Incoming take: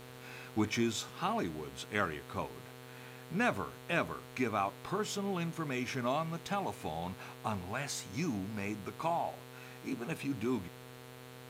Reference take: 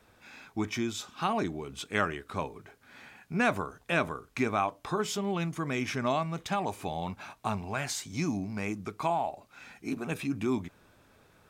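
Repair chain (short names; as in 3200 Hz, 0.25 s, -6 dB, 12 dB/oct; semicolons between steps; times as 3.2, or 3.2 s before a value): de-hum 126.5 Hz, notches 35; notch 460 Hz, Q 30; noise print and reduce 11 dB; gain correction +4.5 dB, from 1.18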